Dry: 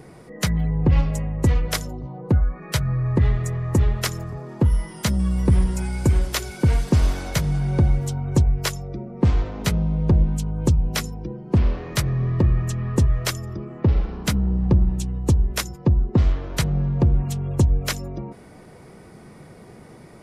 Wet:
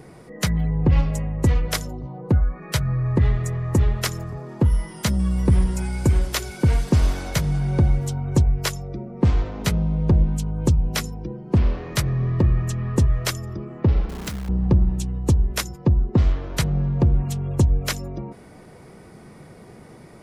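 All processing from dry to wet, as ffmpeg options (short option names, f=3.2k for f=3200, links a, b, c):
-filter_complex "[0:a]asettb=1/sr,asplit=3[a][b][c];[a]atrim=end=14.094[d];[b]atrim=start=14.09:end=14.49,asetpts=PTS-STARTPTS,afade=t=in:d=0.004:c=qsin,afade=t=out:st=0.396:d=0.004:c=qsin,acompressor=threshold=-25dB:ratio=12:attack=3.2:release=140:knee=1:detection=peak,acrusher=bits=7:dc=4:mix=0:aa=0.000001[e];[c]atrim=start=14.486[f];[d][e]acrossfade=d=0.004:c1=hsin:c2=qsin[g];[g][f]acrossfade=d=0.004:c1=qsin:c2=hsin"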